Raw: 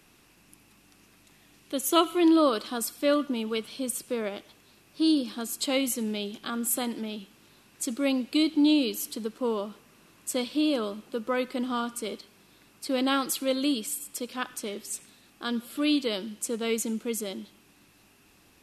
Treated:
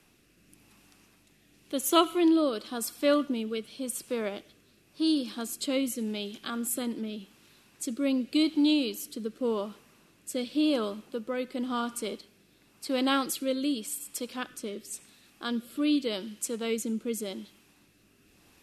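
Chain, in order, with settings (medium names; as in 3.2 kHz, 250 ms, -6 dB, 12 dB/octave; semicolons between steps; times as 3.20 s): rotary cabinet horn 0.9 Hz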